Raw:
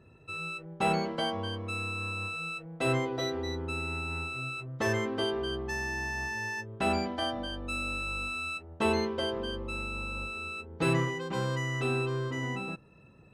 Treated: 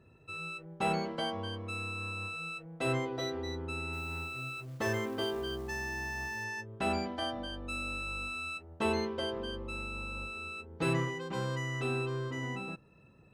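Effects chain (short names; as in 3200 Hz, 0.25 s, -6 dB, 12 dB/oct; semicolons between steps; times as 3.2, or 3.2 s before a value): 3.93–6.44 companded quantiser 6-bit; gain -3.5 dB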